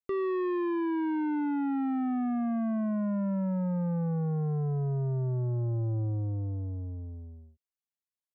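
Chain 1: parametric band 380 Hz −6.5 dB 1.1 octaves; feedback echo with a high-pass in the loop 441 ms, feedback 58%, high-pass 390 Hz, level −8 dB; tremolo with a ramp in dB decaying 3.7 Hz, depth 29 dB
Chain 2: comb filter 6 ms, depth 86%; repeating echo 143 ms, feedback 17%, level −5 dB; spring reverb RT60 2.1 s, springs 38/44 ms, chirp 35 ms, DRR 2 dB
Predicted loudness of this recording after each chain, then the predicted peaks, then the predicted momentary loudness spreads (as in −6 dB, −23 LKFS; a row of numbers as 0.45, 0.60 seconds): −41.0, −24.0 LKFS; −25.0, −10.5 dBFS; 8, 12 LU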